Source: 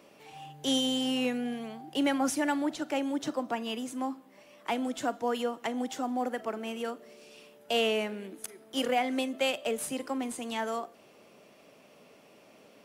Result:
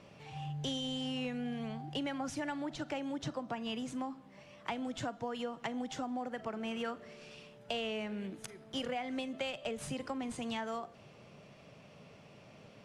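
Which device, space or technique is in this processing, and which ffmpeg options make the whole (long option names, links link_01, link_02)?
jukebox: -filter_complex "[0:a]lowpass=6100,lowshelf=frequency=190:width_type=q:width=1.5:gain=12.5,acompressor=threshold=-35dB:ratio=6,asettb=1/sr,asplit=3[link_01][link_02][link_03];[link_01]atrim=end=6.714[link_04];[link_02]atrim=start=6.71:end=7.35,asetpts=PTS-STARTPTS,afade=type=in:duration=0.004:curve=qsin,afade=type=out:start_time=0.636:duration=0.004:curve=qsin,equalizer=frequency=1600:width_type=o:width=1.4:gain=5[link_05];[link_03]atrim=start=7.346[link_06];[link_04][link_05]acrossfade=duration=0.004:curve1=hsin:curve2=qsin[link_07];[link_07][link_06]acrossfade=duration=0.004:curve1=qsin:curve2=hsin"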